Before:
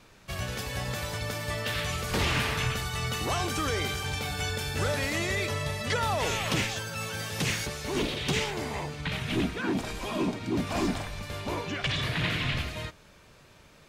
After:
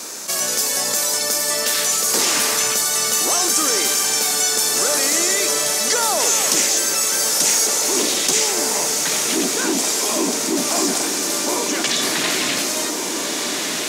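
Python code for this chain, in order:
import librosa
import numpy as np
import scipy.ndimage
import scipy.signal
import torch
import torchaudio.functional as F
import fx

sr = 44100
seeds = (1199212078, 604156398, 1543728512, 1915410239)

p1 = scipy.signal.sosfilt(scipy.signal.butter(4, 250.0, 'highpass', fs=sr, output='sos'), x)
p2 = fx.high_shelf_res(p1, sr, hz=4400.0, db=13.5, q=1.5)
p3 = p2 + fx.echo_diffused(p2, sr, ms=1534, feedback_pct=60, wet_db=-7.5, dry=0)
p4 = fx.env_flatten(p3, sr, amount_pct=50)
y = p4 * librosa.db_to_amplitude(5.0)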